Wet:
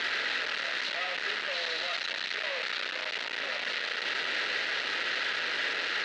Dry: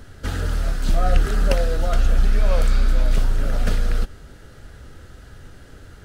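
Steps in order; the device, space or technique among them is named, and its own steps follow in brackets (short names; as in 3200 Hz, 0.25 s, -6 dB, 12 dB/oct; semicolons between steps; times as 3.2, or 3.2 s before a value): HPF 210 Hz 6 dB/oct; 1.53–2.35 thirty-one-band EQ 100 Hz +7 dB, 500 Hz -5 dB, 4000 Hz +9 dB, 6300 Hz +7 dB; home computer beeper (infinite clipping; speaker cabinet 680–4500 Hz, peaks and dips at 760 Hz -6 dB, 1100 Hz -7 dB, 1900 Hz +8 dB, 2700 Hz +5 dB, 4000 Hz +5 dB)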